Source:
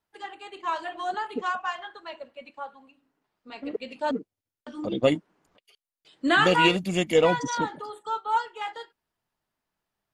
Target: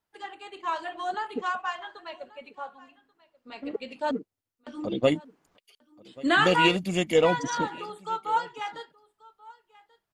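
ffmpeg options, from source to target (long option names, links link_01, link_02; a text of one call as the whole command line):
ffmpeg -i in.wav -filter_complex "[0:a]asettb=1/sr,asplit=3[link_01][link_02][link_03];[link_01]atrim=end=5.164[link_04];[link_02]atrim=start=5.16:end=6.27,asetpts=PTS-STARTPTS,afade=type=in:duration=0.004:curve=qsin,afade=type=out:start_time=1.106:duration=0.004:curve=qsin,highshelf=frequency=4500:gain=4.5[link_05];[link_03]atrim=start=6.266[link_06];[link_04][link_05]acrossfade=duration=0.004:curve1=hsin:curve2=qsin[link_07];[link_07][link_06]acrossfade=duration=0.004:curve1=qsin:curve2=hsin,asplit=2[link_08][link_09];[link_09]aecho=0:1:1135:0.075[link_10];[link_08][link_10]amix=inputs=2:normalize=0,volume=-1dB" out.wav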